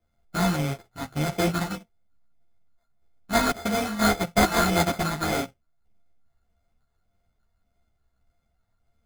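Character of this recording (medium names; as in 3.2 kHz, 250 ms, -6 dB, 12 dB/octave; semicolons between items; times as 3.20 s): a buzz of ramps at a fixed pitch in blocks of 64 samples; phasing stages 6, 1.7 Hz, lowest notch 450–3300 Hz; aliases and images of a low sample rate 2.8 kHz, jitter 0%; a shimmering, thickened sound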